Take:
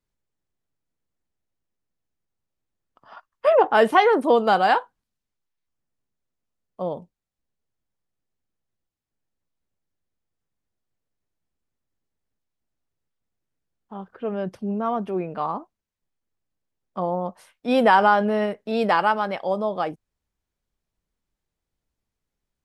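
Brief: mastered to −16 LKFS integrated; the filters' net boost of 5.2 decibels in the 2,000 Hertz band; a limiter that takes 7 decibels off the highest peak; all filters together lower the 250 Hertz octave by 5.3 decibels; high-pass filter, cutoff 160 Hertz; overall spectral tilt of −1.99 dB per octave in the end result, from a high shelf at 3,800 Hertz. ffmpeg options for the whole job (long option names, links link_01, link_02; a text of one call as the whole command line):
ffmpeg -i in.wav -af "highpass=160,equalizer=frequency=250:width_type=o:gain=-5.5,equalizer=frequency=2000:width_type=o:gain=8.5,highshelf=frequency=3800:gain=-5.5,volume=7dB,alimiter=limit=-1.5dB:level=0:latency=1" out.wav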